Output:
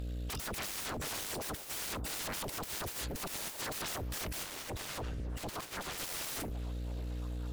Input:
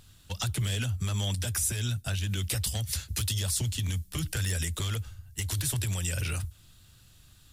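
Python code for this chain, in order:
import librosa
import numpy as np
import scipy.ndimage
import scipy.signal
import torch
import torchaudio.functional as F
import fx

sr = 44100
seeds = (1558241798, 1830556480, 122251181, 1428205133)

p1 = fx.bin_expand(x, sr, power=1.5)
p2 = scipy.signal.sosfilt(scipy.signal.butter(2, 110.0, 'highpass', fs=sr, output='sos'), p1)
p3 = fx.peak_eq(p2, sr, hz=2000.0, db=10.0, octaves=1.4)
p4 = fx.tube_stage(p3, sr, drive_db=25.0, bias=0.25)
p5 = fx.quant_float(p4, sr, bits=2)
p6 = p4 + F.gain(torch.from_numpy(p5), -10.0).numpy()
p7 = fx.add_hum(p6, sr, base_hz=60, snr_db=17)
p8 = fx.fold_sine(p7, sr, drive_db=7, ceiling_db=-40.5)
p9 = fx.high_shelf(p8, sr, hz=6700.0, db=-8.0, at=(4.43, 5.98))
p10 = p9 + fx.echo_stepped(p9, sr, ms=554, hz=420.0, octaves=0.7, feedback_pct=70, wet_db=-9, dry=0)
y = F.gain(torch.from_numpy(p10), 5.0).numpy()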